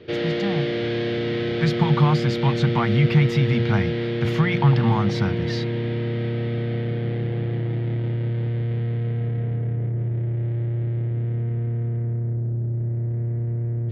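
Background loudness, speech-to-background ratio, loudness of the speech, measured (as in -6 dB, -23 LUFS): -25.5 LUFS, 3.0 dB, -22.5 LUFS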